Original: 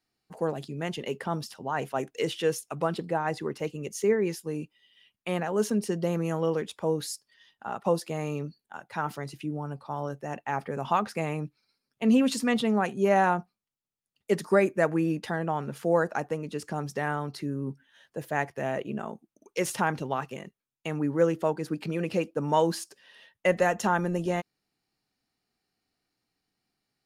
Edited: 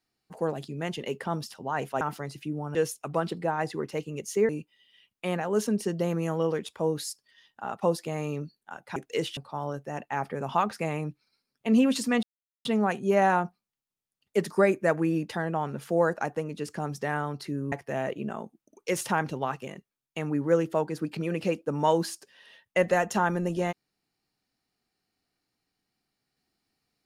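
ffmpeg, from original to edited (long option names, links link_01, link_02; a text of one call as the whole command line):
ffmpeg -i in.wav -filter_complex "[0:a]asplit=8[link_01][link_02][link_03][link_04][link_05][link_06][link_07][link_08];[link_01]atrim=end=2.012[link_09];[link_02]atrim=start=8.988:end=9.732[link_10];[link_03]atrim=start=2.418:end=4.162[link_11];[link_04]atrim=start=4.518:end=8.992[link_12];[link_05]atrim=start=2.008:end=2.422[link_13];[link_06]atrim=start=9.728:end=12.59,asetpts=PTS-STARTPTS,afade=type=out:start_time=2.858:duration=0.004:curve=hsin,apad=pad_dur=0.42[link_14];[link_07]atrim=start=12.59:end=17.662,asetpts=PTS-STARTPTS,afade=type=in:duration=0.004:curve=hsin[link_15];[link_08]atrim=start=18.408[link_16];[link_09][link_10]acrossfade=duration=0.004:curve1=hsin:curve2=hsin[link_17];[link_17][link_11]acrossfade=duration=0.004:curve1=hsin:curve2=hsin[link_18];[link_18][link_12]acrossfade=duration=0.004:curve1=hsin:curve2=hsin[link_19];[link_19][link_13]acrossfade=duration=0.004:curve1=hsin:curve2=hsin[link_20];[link_14][link_15]concat=n=2:v=0:a=1[link_21];[link_20][link_21]acrossfade=duration=0.004:curve1=hsin:curve2=hsin[link_22];[link_22][link_16]acrossfade=duration=0.004:curve1=hsin:curve2=hsin" out.wav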